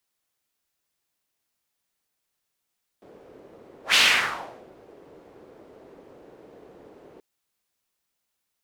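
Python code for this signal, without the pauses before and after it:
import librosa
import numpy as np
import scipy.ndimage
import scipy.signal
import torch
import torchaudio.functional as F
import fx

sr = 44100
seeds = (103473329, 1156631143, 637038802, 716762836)

y = fx.whoosh(sr, seeds[0], length_s=4.18, peak_s=0.93, rise_s=0.12, fall_s=0.79, ends_hz=430.0, peak_hz=3000.0, q=2.2, swell_db=33)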